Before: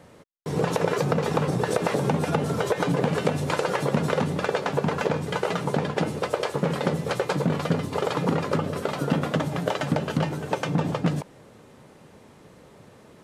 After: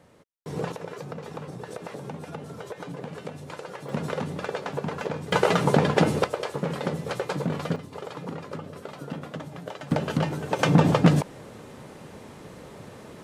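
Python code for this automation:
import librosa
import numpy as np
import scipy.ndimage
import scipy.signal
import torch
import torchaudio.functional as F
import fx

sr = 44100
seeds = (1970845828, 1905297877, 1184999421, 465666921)

y = fx.gain(x, sr, db=fx.steps((0.0, -6.0), (0.72, -13.5), (3.89, -6.0), (5.32, 5.0), (6.24, -4.0), (7.76, -11.5), (9.91, -0.5), (10.59, 6.5)))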